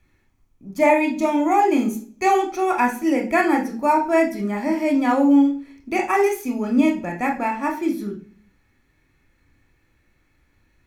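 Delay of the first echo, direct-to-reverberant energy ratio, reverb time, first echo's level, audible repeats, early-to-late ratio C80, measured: none, 1.5 dB, 0.45 s, none, none, 15.0 dB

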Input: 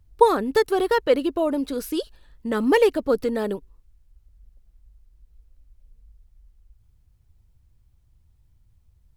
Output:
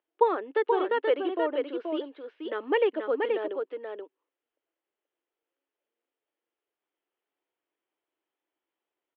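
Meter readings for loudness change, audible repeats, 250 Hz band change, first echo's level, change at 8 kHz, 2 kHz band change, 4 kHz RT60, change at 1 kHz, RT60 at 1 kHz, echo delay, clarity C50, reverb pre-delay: -6.0 dB, 1, -9.5 dB, -4.5 dB, under -35 dB, -5.0 dB, none, -5.5 dB, none, 0.48 s, none, none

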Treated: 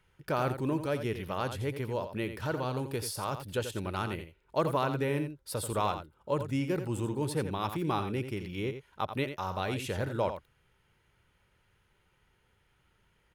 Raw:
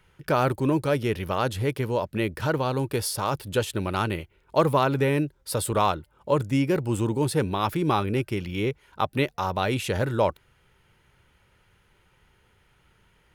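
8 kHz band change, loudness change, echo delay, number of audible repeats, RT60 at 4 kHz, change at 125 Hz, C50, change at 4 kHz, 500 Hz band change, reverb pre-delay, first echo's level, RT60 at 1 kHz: -7.5 dB, -7.5 dB, 86 ms, 1, none, -7.5 dB, none, -7.5 dB, -7.5 dB, none, -9.5 dB, none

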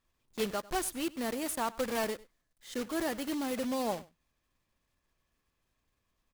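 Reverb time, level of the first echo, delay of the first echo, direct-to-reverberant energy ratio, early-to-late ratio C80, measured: none, -20.5 dB, 98 ms, none, none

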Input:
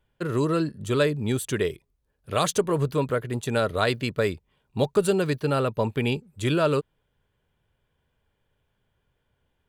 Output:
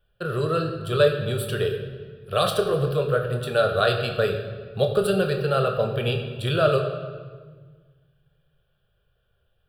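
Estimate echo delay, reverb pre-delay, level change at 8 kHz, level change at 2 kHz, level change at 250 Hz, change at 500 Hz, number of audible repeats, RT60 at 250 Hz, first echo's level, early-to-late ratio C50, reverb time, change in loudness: none, 21 ms, -5.5 dB, +2.5 dB, -3.5 dB, +3.0 dB, none, 2.1 s, none, 6.5 dB, 1.5 s, +1.5 dB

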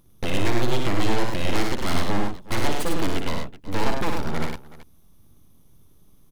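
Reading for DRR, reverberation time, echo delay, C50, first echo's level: none, none, 59 ms, none, -5.0 dB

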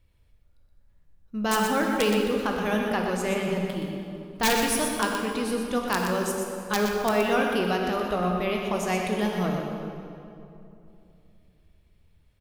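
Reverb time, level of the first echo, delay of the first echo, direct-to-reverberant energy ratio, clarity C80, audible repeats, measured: 2.8 s, -7.0 dB, 0.122 s, 0.0 dB, 1.5 dB, 1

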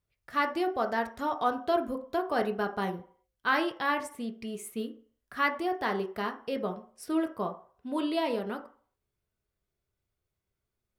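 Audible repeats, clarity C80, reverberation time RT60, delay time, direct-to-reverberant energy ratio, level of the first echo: none, 17.5 dB, 0.45 s, none, 3.5 dB, none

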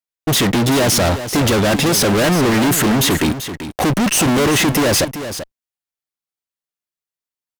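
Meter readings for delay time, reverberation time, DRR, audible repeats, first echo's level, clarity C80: 0.387 s, none, none, 1, -11.0 dB, none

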